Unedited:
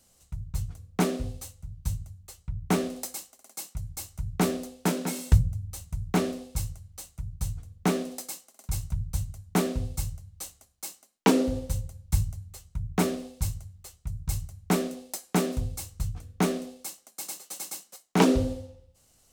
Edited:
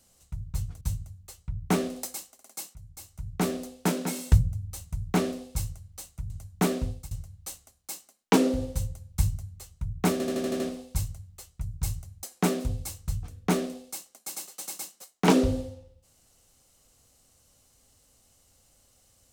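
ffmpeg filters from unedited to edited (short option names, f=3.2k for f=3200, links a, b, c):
-filter_complex "[0:a]asplit=12[a][b][c][d][e][f][g][h][i][j][k][l];[a]atrim=end=0.812[m];[b]atrim=start=1.808:end=3.75,asetpts=PTS-STARTPTS,afade=t=out:st=1.938:d=0.004:c=hsin:silence=0.211349[n];[c]atrim=start=3.75:end=7.302,asetpts=PTS-STARTPTS,afade=t=in:d=0.96:silence=0.211349[o];[d]atrim=start=9.238:end=10.05,asetpts=PTS-STARTPTS,afade=t=out:st=0.542:d=0.27:silence=0.0891251[p];[e]atrim=start=10.05:end=13.142,asetpts=PTS-STARTPTS,afade=t=in:d=0.004:c=hsin:silence=0.0891251[q];[f]atrim=start=13.058:end=13.142[r];[g]atrim=start=13.058:end=13.142[s];[h]atrim=start=13.058:end=13.142[t];[i]atrim=start=13.058:end=13.142[u];[j]atrim=start=13.058:end=13.142[v];[k]atrim=start=13.058:end=14.692[w];[l]atrim=start=15.148[x];[n][o]concat=n=2:v=0:a=1[y];[m][y]acrossfade=d=0.004:c1=hsin:c2=hsin[z];[p][q]concat=n=2:v=0:a=1[aa];[z][aa]acrossfade=d=0.004:c1=hsin:c2=hsin[ab];[ab][r]acrossfade=d=0.004:c1=hsin:c2=hsin[ac];[ac][s]acrossfade=d=0.004:c1=hsin:c2=hsin[ad];[ad][t]acrossfade=d=0.004:c1=hsin:c2=hsin[ae];[ae][u]acrossfade=d=0.004:c1=hsin:c2=hsin[af];[af][v]acrossfade=d=0.004:c1=hsin:c2=hsin[ag];[ag][w]acrossfade=d=0.004:c1=hsin:c2=hsin[ah];[ah][x]acrossfade=d=0.004:c1=hsin:c2=hsin"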